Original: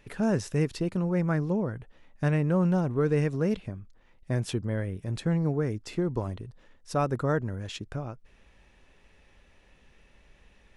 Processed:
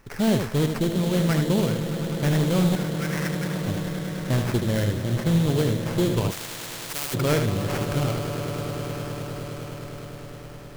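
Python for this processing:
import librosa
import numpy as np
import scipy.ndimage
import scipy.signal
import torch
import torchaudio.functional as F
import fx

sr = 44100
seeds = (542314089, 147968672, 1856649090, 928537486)

p1 = fx.steep_highpass(x, sr, hz=1400.0, slope=72, at=(2.75, 3.61))
p2 = fx.rider(p1, sr, range_db=4, speed_s=0.5)
p3 = p1 + F.gain(torch.from_numpy(p2), 3.0).numpy()
p4 = fx.echo_swell(p3, sr, ms=103, loudest=8, wet_db=-16.5)
p5 = fx.sample_hold(p4, sr, seeds[0], rate_hz=3700.0, jitter_pct=20)
p6 = np.clip(p5, -10.0 ** (-13.5 / 20.0), 10.0 ** (-13.5 / 20.0))
p7 = p6 + 10.0 ** (-6.5 / 20.0) * np.pad(p6, (int(77 * sr / 1000.0), 0))[:len(p6)]
p8 = fx.spectral_comp(p7, sr, ratio=4.0, at=(6.3, 7.13), fade=0.02)
y = F.gain(torch.from_numpy(p8), -2.5).numpy()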